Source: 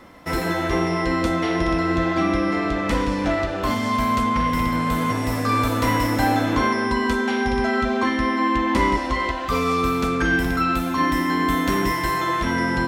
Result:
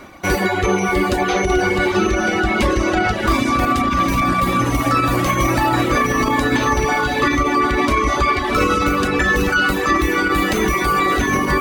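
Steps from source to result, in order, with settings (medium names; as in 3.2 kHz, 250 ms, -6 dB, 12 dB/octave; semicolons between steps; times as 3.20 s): echo that smears into a reverb 774 ms, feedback 55%, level -5 dB; peak limiter -12 dBFS, peak gain reduction 5.5 dB; reverb removal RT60 1 s; tape speed +11%; trim +7 dB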